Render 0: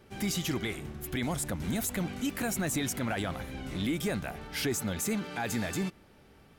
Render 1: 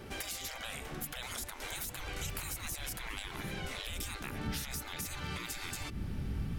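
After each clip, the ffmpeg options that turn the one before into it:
-af "afftfilt=real='re*lt(hypot(re,im),0.0316)':imag='im*lt(hypot(re,im),0.0316)':win_size=1024:overlap=0.75,acompressor=threshold=-47dB:ratio=10,asubboost=boost=8:cutoff=190,volume=9.5dB"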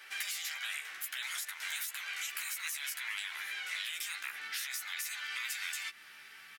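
-filter_complex "[0:a]highpass=f=1.8k:t=q:w=1.9,asplit=2[a][b];[b]adelay=13,volume=-5dB[c];[a][c]amix=inputs=2:normalize=0"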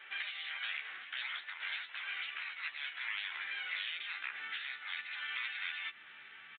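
-af "aresample=8000,aresample=44100"

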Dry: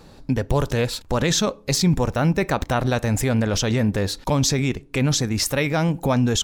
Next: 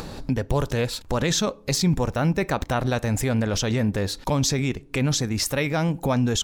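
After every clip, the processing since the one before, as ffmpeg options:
-af "acompressor=mode=upward:threshold=-21dB:ratio=2.5,volume=-2.5dB"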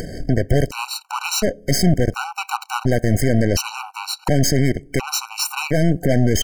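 -af "aeval=exprs='0.299*(cos(1*acos(clip(val(0)/0.299,-1,1)))-cos(1*PI/2))+0.0473*(cos(8*acos(clip(val(0)/0.299,-1,1)))-cos(8*PI/2))':c=same,asuperstop=centerf=3500:order=20:qfactor=5.4,afftfilt=real='re*gt(sin(2*PI*0.7*pts/sr)*(1-2*mod(floor(b*sr/1024/760),2)),0)':imag='im*gt(sin(2*PI*0.7*pts/sr)*(1-2*mod(floor(b*sr/1024/760),2)),0)':win_size=1024:overlap=0.75,volume=6dB"

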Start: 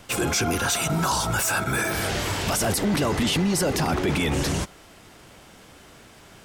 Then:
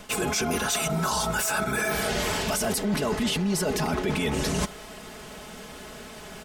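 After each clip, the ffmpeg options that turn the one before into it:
-af "equalizer=f=540:w=1.5:g=2,aecho=1:1:4.7:0.7,areverse,acompressor=threshold=-29dB:ratio=6,areverse,volume=5dB"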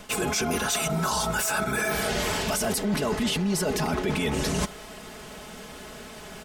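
-af anull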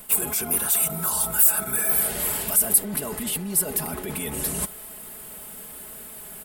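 -af "aexciter=amount=14.5:drive=4.3:freq=8.7k,volume=-6dB"

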